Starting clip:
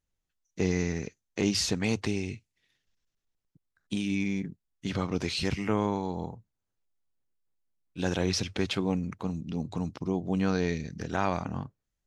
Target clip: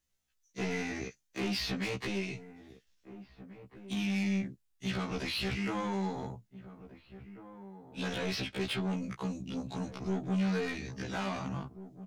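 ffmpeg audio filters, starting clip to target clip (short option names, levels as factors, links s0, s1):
-filter_complex "[0:a]acrossover=split=4700[s0][s1];[s1]acompressor=threshold=0.00224:ratio=4:attack=1:release=60[s2];[s0][s2]amix=inputs=2:normalize=0,tiltshelf=f=1500:g=-4,acrossover=split=110|4800[s3][s4][s5];[s5]acompressor=threshold=0.00141:ratio=6[s6];[s3][s4][s6]amix=inputs=3:normalize=0,asoftclip=type=tanh:threshold=0.0237,asplit=2[s7][s8];[s8]adelay=1691,volume=0.2,highshelf=f=4000:g=-38[s9];[s7][s9]amix=inputs=2:normalize=0,afftfilt=real='re*1.73*eq(mod(b,3),0)':imag='im*1.73*eq(mod(b,3),0)':win_size=2048:overlap=0.75,volume=1.88"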